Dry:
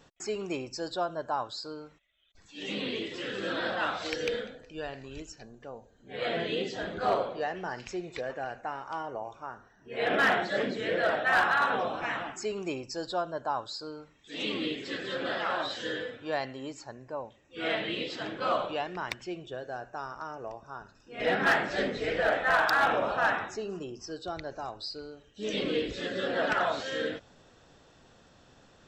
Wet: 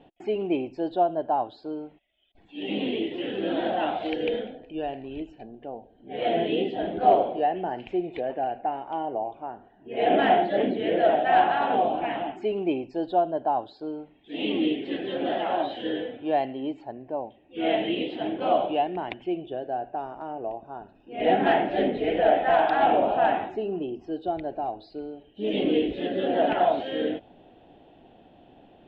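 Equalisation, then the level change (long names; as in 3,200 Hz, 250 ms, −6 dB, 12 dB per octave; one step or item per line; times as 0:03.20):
drawn EQ curve 130 Hz 0 dB, 320 Hz +11 dB, 520 Hz +3 dB, 740 Hz +12 dB, 1,200 Hz −10 dB, 3,100 Hz +3 dB, 5,600 Hz −29 dB
0.0 dB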